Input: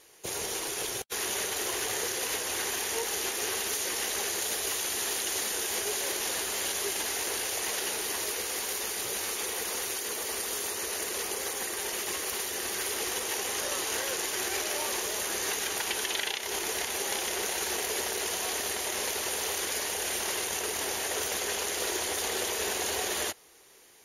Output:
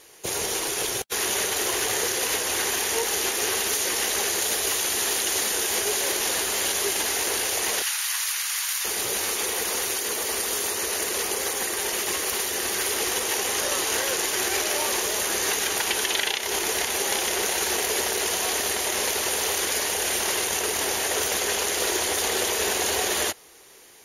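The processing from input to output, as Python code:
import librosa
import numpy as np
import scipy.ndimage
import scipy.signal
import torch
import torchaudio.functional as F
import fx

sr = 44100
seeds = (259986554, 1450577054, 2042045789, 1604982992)

y = fx.highpass(x, sr, hz=1100.0, slope=24, at=(7.82, 8.85))
y = F.gain(torch.from_numpy(y), 6.5).numpy()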